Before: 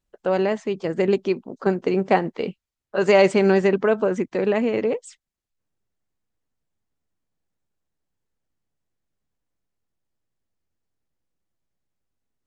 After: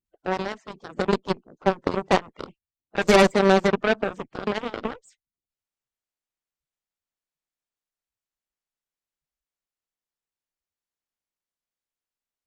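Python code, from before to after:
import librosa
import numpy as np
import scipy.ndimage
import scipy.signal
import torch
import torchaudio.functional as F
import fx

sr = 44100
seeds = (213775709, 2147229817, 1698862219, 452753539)

y = fx.spec_quant(x, sr, step_db=30)
y = fx.cheby_harmonics(y, sr, harmonics=(4, 5, 6, 7), levels_db=(-14, -9, -32, -7), full_scale_db=-4.5)
y = y * librosa.db_to_amplitude(-2.5)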